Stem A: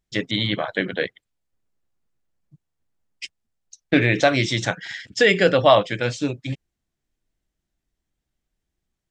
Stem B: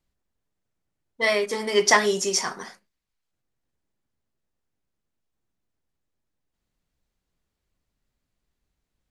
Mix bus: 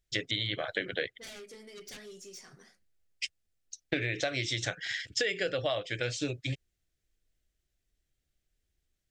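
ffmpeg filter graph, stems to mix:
-filter_complex "[0:a]equalizer=f=210:t=o:w=0.95:g=-14.5,volume=1.06[s0];[1:a]dynaudnorm=f=350:g=3:m=4.73,aeval=exprs='0.944*(cos(1*acos(clip(val(0)/0.944,-1,1)))-cos(1*PI/2))+0.376*(cos(3*acos(clip(val(0)/0.944,-1,1)))-cos(3*PI/2))+0.0422*(cos(7*acos(clip(val(0)/0.944,-1,1)))-cos(7*PI/2))':c=same,asoftclip=type=tanh:threshold=0.112,volume=0.133[s1];[s0][s1]amix=inputs=2:normalize=0,equalizer=f=960:w=2:g=-14,acompressor=threshold=0.0398:ratio=8"

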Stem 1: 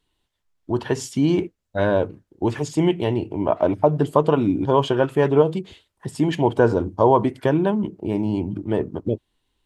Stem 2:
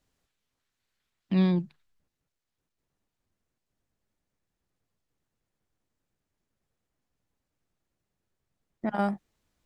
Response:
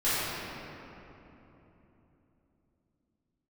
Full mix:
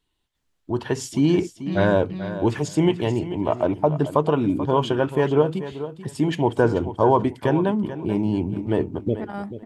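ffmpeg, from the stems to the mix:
-filter_complex "[0:a]dynaudnorm=f=450:g=5:m=2,volume=0.75,asplit=2[s0][s1];[s1]volume=0.237[s2];[1:a]alimiter=limit=0.106:level=0:latency=1,adelay=350,volume=0.75,asplit=2[s3][s4];[s4]volume=0.631[s5];[s2][s5]amix=inputs=2:normalize=0,aecho=0:1:436|872|1308:1|0.18|0.0324[s6];[s0][s3][s6]amix=inputs=3:normalize=0,equalizer=f=560:w=1.5:g=-2"

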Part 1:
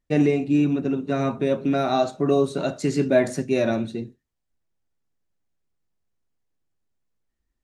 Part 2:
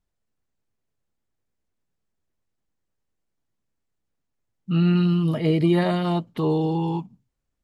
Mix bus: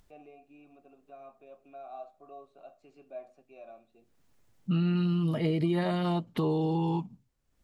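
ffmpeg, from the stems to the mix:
-filter_complex "[0:a]asplit=3[s0][s1][s2];[s0]bandpass=f=730:t=q:w=8,volume=1[s3];[s1]bandpass=f=1090:t=q:w=8,volume=0.501[s4];[s2]bandpass=f=2440:t=q:w=8,volume=0.355[s5];[s3][s4][s5]amix=inputs=3:normalize=0,volume=0.158[s6];[1:a]acompressor=threshold=0.0447:ratio=4,volume=1.12[s7];[s6][s7]amix=inputs=2:normalize=0,acompressor=mode=upward:threshold=0.00224:ratio=2.5"

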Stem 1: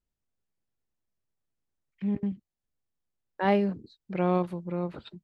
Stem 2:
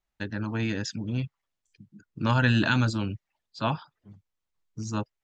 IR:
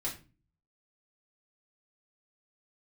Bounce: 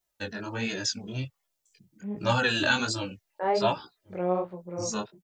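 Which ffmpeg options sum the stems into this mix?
-filter_complex "[0:a]lowpass=1600,volume=0.376[s0];[1:a]asplit=2[s1][s2];[s2]adelay=2.4,afreqshift=-2.8[s3];[s1][s3]amix=inputs=2:normalize=1,volume=0.708[s4];[s0][s4]amix=inputs=2:normalize=0,equalizer=f=550:t=o:w=1.6:g=11.5,crystalizer=i=8:c=0,flanger=delay=16:depth=7:speed=1.3"

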